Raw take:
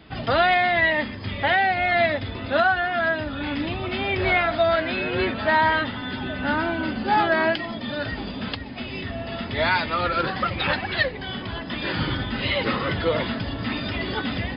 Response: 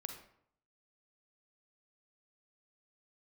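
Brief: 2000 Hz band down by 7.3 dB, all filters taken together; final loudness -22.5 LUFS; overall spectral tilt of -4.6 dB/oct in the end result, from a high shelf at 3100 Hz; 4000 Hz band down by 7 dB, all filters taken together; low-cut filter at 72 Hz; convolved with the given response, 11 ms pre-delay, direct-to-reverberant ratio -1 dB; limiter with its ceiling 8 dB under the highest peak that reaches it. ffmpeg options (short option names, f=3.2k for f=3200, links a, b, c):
-filter_complex "[0:a]highpass=72,equalizer=f=2k:t=o:g=-7.5,highshelf=f=3.1k:g=-3.5,equalizer=f=4k:t=o:g=-3.5,alimiter=limit=-19dB:level=0:latency=1,asplit=2[a][b];[1:a]atrim=start_sample=2205,adelay=11[c];[b][c]afir=irnorm=-1:irlink=0,volume=3.5dB[d];[a][d]amix=inputs=2:normalize=0,volume=2.5dB"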